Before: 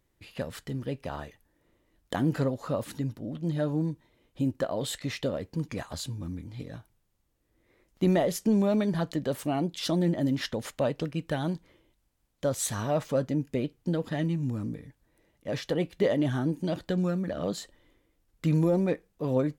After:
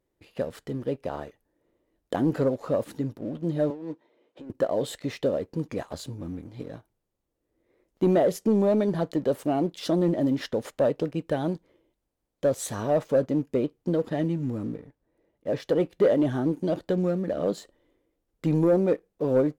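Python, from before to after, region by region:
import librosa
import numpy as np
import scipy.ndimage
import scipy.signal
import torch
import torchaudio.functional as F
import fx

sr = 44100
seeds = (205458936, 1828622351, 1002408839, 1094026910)

y = fx.chain(x, sr, fx.highpass(hz=350.0, slope=12),
    fx.air_absorb(metres=110.0),
    fx.over_compress(threshold_db=-41.0, ratio=-1.0), at=(3.7, 4.5))
y = fx.chain(y, sr, fx.block_float(bits=7),
    fx.high_shelf(hz=4200.0, db=-9.5), at=(14.73, 15.6))
y = fx.peak_eq(y, sr, hz=450.0, db=11.0, octaves=2.0)
y = fx.leveller(y, sr, passes=1)
y = y * librosa.db_to_amplitude(-7.5)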